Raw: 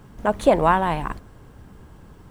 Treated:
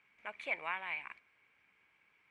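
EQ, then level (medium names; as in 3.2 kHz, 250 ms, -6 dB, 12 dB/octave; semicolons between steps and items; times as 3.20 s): band-pass filter 2.3 kHz, Q 16; +6.5 dB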